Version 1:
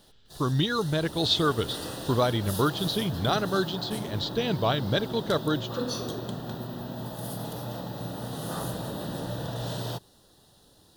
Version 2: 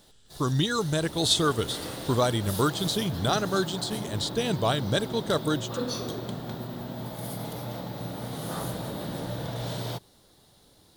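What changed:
speech: remove low-pass filter 4,900 Hz 24 dB per octave
background: remove Butterworth band-reject 2,200 Hz, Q 4.6

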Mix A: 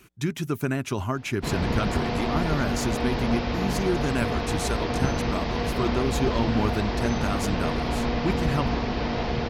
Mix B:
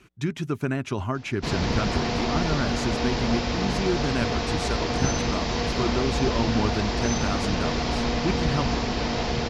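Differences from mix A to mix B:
background: remove high-frequency loss of the air 250 metres
master: add high-frequency loss of the air 68 metres

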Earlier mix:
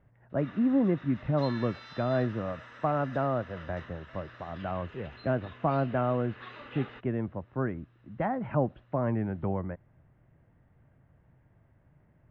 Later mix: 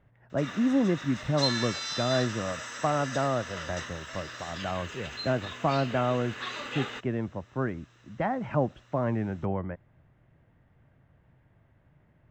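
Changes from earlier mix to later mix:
background +6.0 dB
master: remove high-frequency loss of the air 380 metres

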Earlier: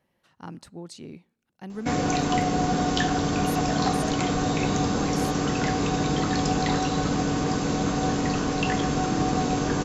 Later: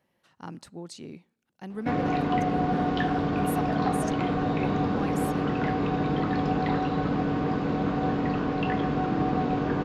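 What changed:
background: add high-frequency loss of the air 400 metres
master: add low-shelf EQ 64 Hz −9.5 dB

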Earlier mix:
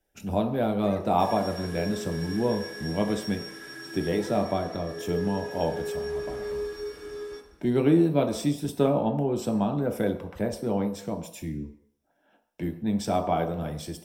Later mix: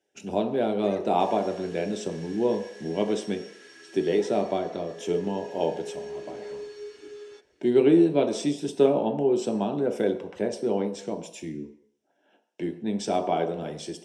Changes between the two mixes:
second sound: send off
master: add loudspeaker in its box 210–8,700 Hz, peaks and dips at 390 Hz +8 dB, 1,200 Hz −6 dB, 2,900 Hz +5 dB, 6,300 Hz +4 dB

